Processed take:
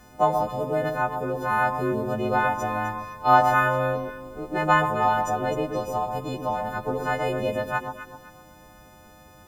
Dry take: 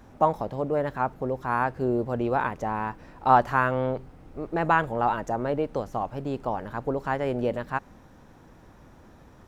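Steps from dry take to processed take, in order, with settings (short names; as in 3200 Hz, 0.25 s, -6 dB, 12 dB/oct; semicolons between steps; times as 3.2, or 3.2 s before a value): frequency quantiser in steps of 3 st; echo with dull and thin repeats by turns 0.128 s, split 1100 Hz, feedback 56%, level -5 dB; bit-crush 11-bit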